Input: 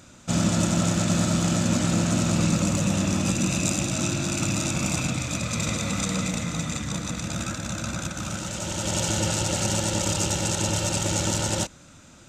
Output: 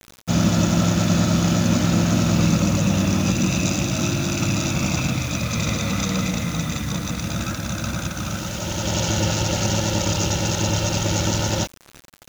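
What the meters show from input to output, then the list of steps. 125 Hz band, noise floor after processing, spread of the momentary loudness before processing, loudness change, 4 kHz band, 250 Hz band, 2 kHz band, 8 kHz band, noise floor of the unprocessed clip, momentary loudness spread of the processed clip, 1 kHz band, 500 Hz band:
+5.0 dB, -47 dBFS, 7 LU, +3.5 dB, +3.5 dB, +4.5 dB, +3.5 dB, 0.0 dB, -49 dBFS, 8 LU, +3.5 dB, +3.5 dB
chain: steep low-pass 6800 Hz 72 dB/oct; low shelf 92 Hz +4.5 dB; bit-crush 7-bit; gain +3.5 dB

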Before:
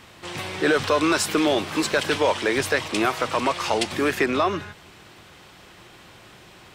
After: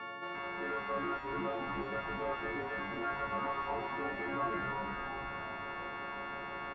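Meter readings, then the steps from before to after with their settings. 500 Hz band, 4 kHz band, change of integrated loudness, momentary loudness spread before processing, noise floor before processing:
-16.0 dB, -22.0 dB, -15.0 dB, 7 LU, -49 dBFS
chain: frequency quantiser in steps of 4 st; reverse; compressor 6:1, threshold -30 dBFS, peak gain reduction 19 dB; reverse; limiter -28 dBFS, peak gain reduction 9 dB; hard clip -35.5 dBFS, distortion -12 dB; speaker cabinet 160–2200 Hz, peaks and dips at 370 Hz +3 dB, 620 Hz +6 dB, 1200 Hz +9 dB; frequency-shifting echo 0.348 s, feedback 50%, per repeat -150 Hz, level -5 dB

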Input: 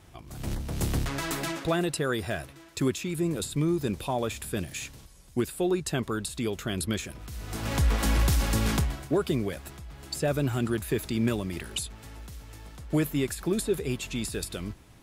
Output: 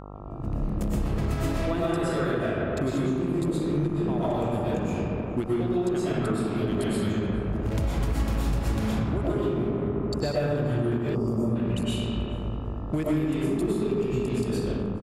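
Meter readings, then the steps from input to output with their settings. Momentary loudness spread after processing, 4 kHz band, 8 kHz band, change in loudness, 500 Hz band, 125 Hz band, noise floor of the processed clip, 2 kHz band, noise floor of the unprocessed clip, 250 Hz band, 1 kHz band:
3 LU, -4.0 dB, -9.5 dB, +2.0 dB, +3.5 dB, +3.0 dB, -32 dBFS, -2.5 dB, -52 dBFS, +4.0 dB, +2.0 dB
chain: Wiener smoothing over 41 samples; digital reverb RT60 2.4 s, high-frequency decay 0.45×, pre-delay 80 ms, DRR -9.5 dB; compressor 6:1, threshold -27 dBFS, peak gain reduction 15.5 dB; high shelf 4300 Hz -4.5 dB; spectral gain 11.15–11.56, 1300–4600 Hz -23 dB; AGC gain up to 3.5 dB; buzz 50 Hz, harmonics 27, -42 dBFS -3 dB/oct; outdoor echo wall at 73 m, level -18 dB; ending taper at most 220 dB/s

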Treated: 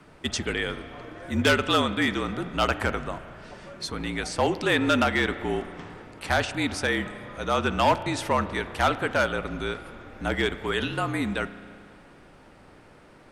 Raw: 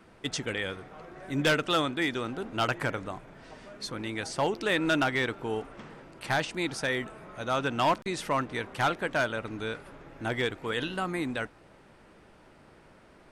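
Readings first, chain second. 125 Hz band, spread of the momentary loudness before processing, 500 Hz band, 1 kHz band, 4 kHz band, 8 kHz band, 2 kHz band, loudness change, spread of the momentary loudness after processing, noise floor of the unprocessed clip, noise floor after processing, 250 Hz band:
+4.5 dB, 16 LU, +4.0 dB, +4.0 dB, +4.0 dB, +4.0 dB, +3.5 dB, +4.0 dB, 16 LU, -57 dBFS, -52 dBFS, +4.5 dB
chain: frequency shift -47 Hz; spring tank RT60 2.3 s, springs 34 ms, chirp 25 ms, DRR 13 dB; gain +4 dB

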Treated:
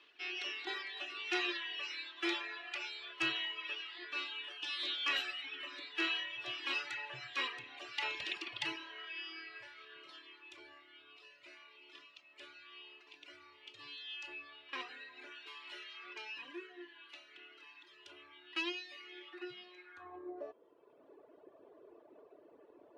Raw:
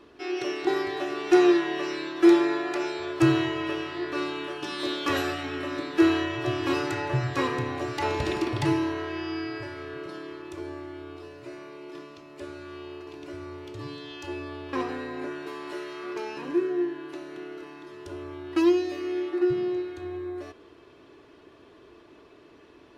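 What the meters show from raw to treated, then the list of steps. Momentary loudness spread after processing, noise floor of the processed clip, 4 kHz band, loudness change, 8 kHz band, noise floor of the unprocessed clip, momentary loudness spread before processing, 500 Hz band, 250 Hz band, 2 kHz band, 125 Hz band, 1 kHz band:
21 LU, -63 dBFS, -1.5 dB, -12.5 dB, n/a, -53 dBFS, 18 LU, -24.0 dB, -25.0 dB, -5.5 dB, -33.5 dB, -15.5 dB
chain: reverb removal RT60 1.6 s; band-pass sweep 2900 Hz -> 570 Hz, 19.7–20.31; gain +3 dB

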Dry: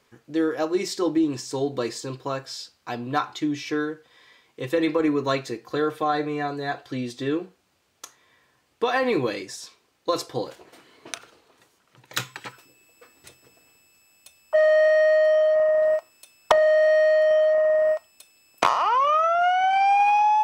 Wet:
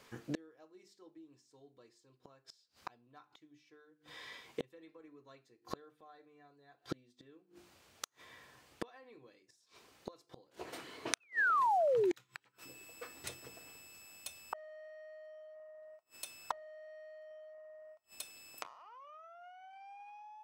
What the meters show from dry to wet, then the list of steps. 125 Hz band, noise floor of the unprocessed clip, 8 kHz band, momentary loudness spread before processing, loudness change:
-20.0 dB, -67 dBFS, -10.0 dB, 16 LU, -17.5 dB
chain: notches 50/100/150/200/250/300/350/400 Hz; painted sound fall, 11.2–12.14, 320–2700 Hz -33 dBFS; flipped gate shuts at -28 dBFS, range -38 dB; gain +3.5 dB

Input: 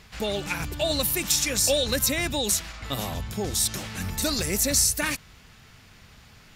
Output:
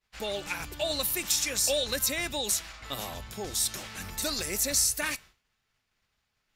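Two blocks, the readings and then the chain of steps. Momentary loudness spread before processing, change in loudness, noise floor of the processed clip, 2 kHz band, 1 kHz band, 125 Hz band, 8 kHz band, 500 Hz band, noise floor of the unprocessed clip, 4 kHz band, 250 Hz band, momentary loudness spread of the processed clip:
11 LU, -4.0 dB, -79 dBFS, -4.0 dB, -4.5 dB, -11.5 dB, -3.5 dB, -5.0 dB, -52 dBFS, -3.5 dB, -9.0 dB, 13 LU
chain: bell 120 Hz -9.5 dB 2.5 oct; expander -40 dBFS; resonator 120 Hz, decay 0.22 s, harmonics odd, mix 40%

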